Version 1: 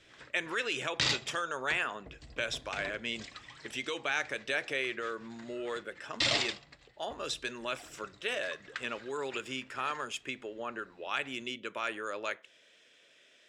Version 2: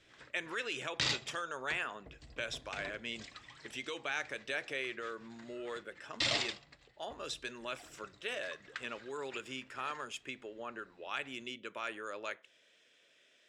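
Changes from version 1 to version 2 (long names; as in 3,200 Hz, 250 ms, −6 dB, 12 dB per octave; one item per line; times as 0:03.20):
speech −5.0 dB
background −3.5 dB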